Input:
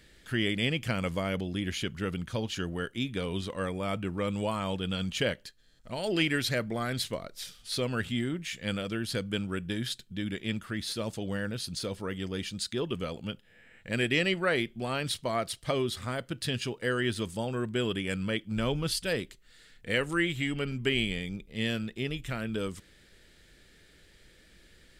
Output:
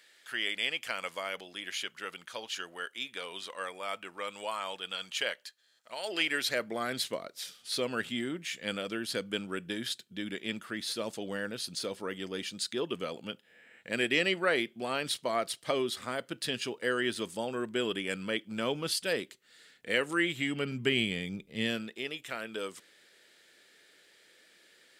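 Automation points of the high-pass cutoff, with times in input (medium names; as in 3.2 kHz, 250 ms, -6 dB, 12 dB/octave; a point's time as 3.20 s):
5.96 s 760 Hz
6.87 s 270 Hz
20.18 s 270 Hz
20.82 s 130 Hz
21.56 s 130 Hz
22.02 s 440 Hz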